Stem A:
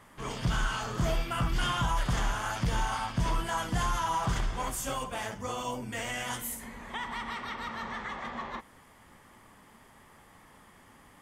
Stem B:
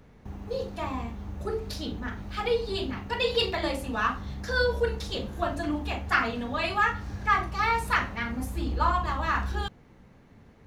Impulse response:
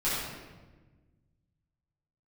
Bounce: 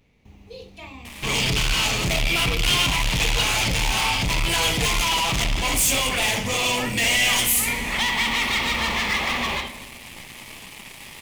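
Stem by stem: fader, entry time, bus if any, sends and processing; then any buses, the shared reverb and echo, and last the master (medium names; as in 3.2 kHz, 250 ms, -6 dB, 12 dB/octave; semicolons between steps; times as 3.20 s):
-3.5 dB, 1.05 s, send -19 dB, de-hum 219.5 Hz, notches 4; waveshaping leveller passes 5; endings held to a fixed fall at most 150 dB/s
-8.5 dB, 0.00 s, no send, vibrato 1.2 Hz 51 cents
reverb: on, RT60 1.3 s, pre-delay 6 ms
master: resonant high shelf 1.9 kHz +6.5 dB, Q 3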